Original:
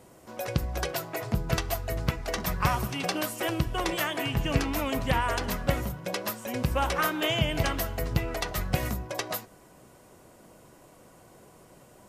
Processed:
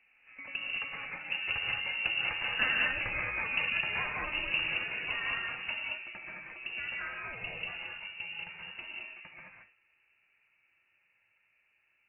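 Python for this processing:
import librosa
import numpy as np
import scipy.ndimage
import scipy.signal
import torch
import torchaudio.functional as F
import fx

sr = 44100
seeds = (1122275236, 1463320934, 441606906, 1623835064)

y = fx.doppler_pass(x, sr, speed_mps=6, closest_m=8.2, pass_at_s=2.83)
y = fx.freq_invert(y, sr, carrier_hz=2800)
y = fx.rev_gated(y, sr, seeds[0], gate_ms=240, shape='rising', drr_db=-2.0)
y = F.gain(torch.from_numpy(y), -6.5).numpy()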